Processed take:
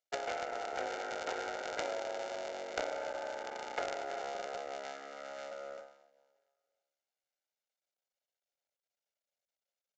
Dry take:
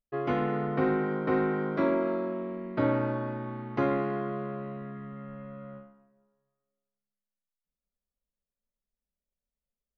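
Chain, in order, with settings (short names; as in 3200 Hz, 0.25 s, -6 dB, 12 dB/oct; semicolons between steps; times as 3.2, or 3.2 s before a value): cycle switcher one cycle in 3, muted; HPF 440 Hz 24 dB/oct; bell 1100 Hz -13.5 dB 0.24 oct; comb 1.4 ms, depth 47%; compressor 5:1, threshold -42 dBFS, peak gain reduction 14 dB; added harmonics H 2 -22 dB, 7 -21 dB, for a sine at -19.5 dBFS; short-mantissa float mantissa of 2-bit; downsampling 16000 Hz; gain +13 dB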